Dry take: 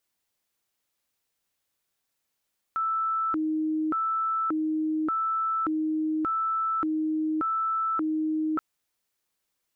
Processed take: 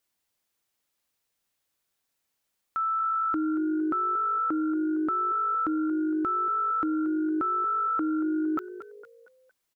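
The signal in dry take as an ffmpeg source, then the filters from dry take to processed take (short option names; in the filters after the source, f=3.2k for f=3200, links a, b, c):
-f lavfi -i "aevalsrc='0.0631*sin(2*PI*(816*t+504/0.86*(0.5-abs(mod(0.86*t,1)-0.5))))':d=5.83:s=44100"
-filter_complex "[0:a]asplit=5[a][b][c][d][e];[b]adelay=230,afreqshift=51,volume=-14dB[f];[c]adelay=460,afreqshift=102,volume=-21.1dB[g];[d]adelay=690,afreqshift=153,volume=-28.3dB[h];[e]adelay=920,afreqshift=204,volume=-35.4dB[i];[a][f][g][h][i]amix=inputs=5:normalize=0"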